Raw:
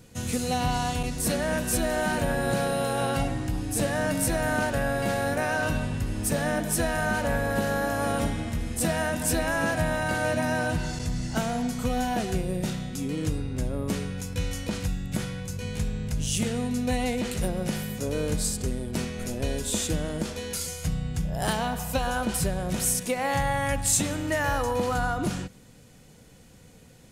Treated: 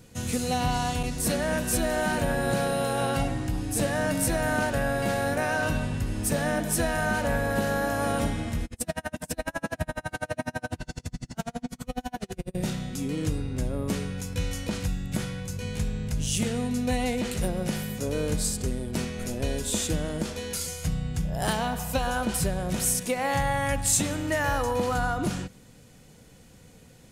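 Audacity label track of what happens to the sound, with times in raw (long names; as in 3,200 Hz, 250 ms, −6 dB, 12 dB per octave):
8.650000	12.550000	tremolo with a sine in dB 12 Hz, depth 40 dB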